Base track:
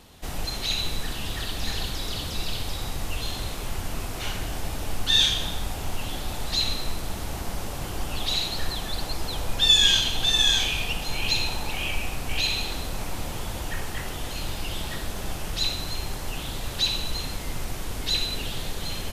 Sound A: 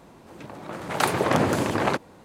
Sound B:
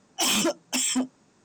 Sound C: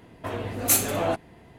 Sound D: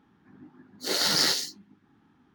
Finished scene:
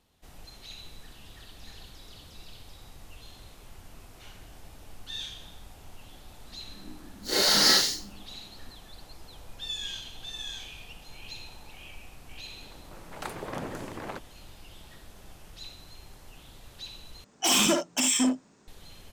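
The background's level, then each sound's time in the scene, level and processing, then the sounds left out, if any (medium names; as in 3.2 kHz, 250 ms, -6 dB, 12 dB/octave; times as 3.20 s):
base track -18 dB
6.42 s: add D -4.5 dB + Schroeder reverb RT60 0.35 s, combs from 29 ms, DRR -7 dB
12.22 s: add A -15 dB
17.24 s: replace with B -0.5 dB + early reflections 51 ms -5 dB, 74 ms -8.5 dB
not used: C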